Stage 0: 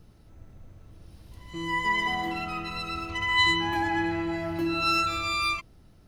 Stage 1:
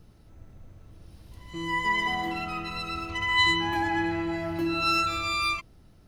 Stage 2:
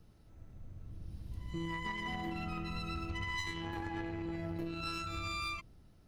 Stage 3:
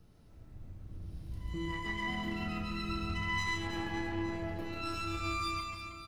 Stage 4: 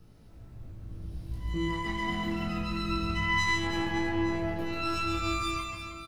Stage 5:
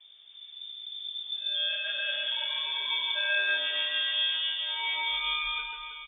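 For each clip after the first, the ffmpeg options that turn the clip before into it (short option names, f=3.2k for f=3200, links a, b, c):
-af anull
-filter_complex "[0:a]acrossover=split=270[a][b];[a]dynaudnorm=f=160:g=9:m=11dB[c];[c][b]amix=inputs=2:normalize=0,aeval=exprs='0.251*(cos(1*acos(clip(val(0)/0.251,-1,1)))-cos(1*PI/2))+0.112*(cos(2*acos(clip(val(0)/0.251,-1,1)))-cos(2*PI/2))+0.00794*(cos(8*acos(clip(val(0)/0.251,-1,1)))-cos(8*PI/2))':c=same,acompressor=threshold=-28dB:ratio=12,volume=-7dB"
-filter_complex "[0:a]asplit=2[a][b];[b]adelay=33,volume=-8dB[c];[a][c]amix=inputs=2:normalize=0,asplit=2[d][e];[e]aecho=0:1:140|322|558.6|866.2|1266:0.631|0.398|0.251|0.158|0.1[f];[d][f]amix=inputs=2:normalize=0"
-filter_complex "[0:a]asplit=2[a][b];[b]adelay=18,volume=-4.5dB[c];[a][c]amix=inputs=2:normalize=0,volume=3.5dB"
-af "lowpass=f=3.1k:t=q:w=0.5098,lowpass=f=3.1k:t=q:w=0.6013,lowpass=f=3.1k:t=q:w=0.9,lowpass=f=3.1k:t=q:w=2.563,afreqshift=-3600"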